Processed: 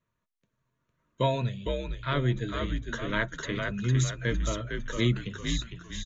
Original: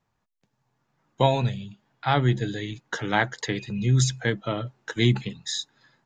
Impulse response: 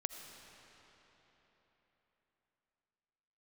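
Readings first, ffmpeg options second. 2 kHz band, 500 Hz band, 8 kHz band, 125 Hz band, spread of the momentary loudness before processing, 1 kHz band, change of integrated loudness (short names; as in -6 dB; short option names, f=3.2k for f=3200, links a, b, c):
-3.5 dB, -4.0 dB, -5.0 dB, -4.5 dB, 11 LU, -7.5 dB, -4.5 dB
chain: -filter_complex "[0:a]equalizer=f=5k:t=o:w=0.2:g=-14,asplit=6[a][b][c][d][e][f];[b]adelay=456,afreqshift=-76,volume=-4.5dB[g];[c]adelay=912,afreqshift=-152,volume=-12.5dB[h];[d]adelay=1368,afreqshift=-228,volume=-20.4dB[i];[e]adelay=1824,afreqshift=-304,volume=-28.4dB[j];[f]adelay=2280,afreqshift=-380,volume=-36.3dB[k];[a][g][h][i][j][k]amix=inputs=6:normalize=0,aresample=16000,aresample=44100,asuperstop=centerf=790:order=12:qfactor=3.6,volume=-5dB"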